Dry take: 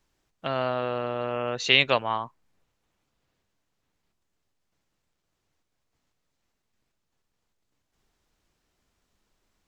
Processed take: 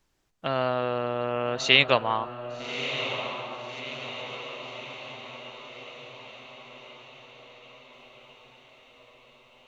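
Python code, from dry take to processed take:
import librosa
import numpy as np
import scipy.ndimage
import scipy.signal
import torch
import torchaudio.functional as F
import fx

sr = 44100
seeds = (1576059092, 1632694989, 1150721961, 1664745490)

y = fx.echo_diffused(x, sr, ms=1224, feedback_pct=58, wet_db=-9.0)
y = y * 10.0 ** (1.0 / 20.0)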